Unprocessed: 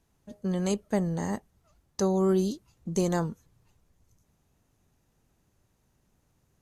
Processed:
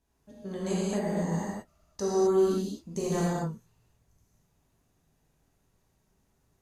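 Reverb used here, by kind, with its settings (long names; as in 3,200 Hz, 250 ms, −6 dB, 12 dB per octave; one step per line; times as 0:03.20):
reverb whose tail is shaped and stops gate 280 ms flat, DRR −7.5 dB
level −8.5 dB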